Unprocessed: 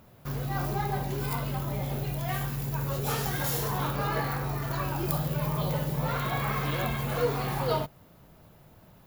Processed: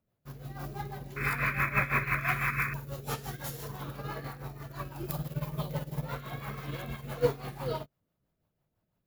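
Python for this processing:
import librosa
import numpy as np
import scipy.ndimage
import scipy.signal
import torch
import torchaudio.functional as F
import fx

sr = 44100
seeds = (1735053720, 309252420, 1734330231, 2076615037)

y = fx.spec_paint(x, sr, seeds[0], shape='noise', start_s=1.16, length_s=1.58, low_hz=980.0, high_hz=2600.0, level_db=-27.0)
y = fx.rotary(y, sr, hz=6.0)
y = fx.upward_expand(y, sr, threshold_db=-42.0, expansion=2.5)
y = F.gain(torch.from_numpy(y), 4.0).numpy()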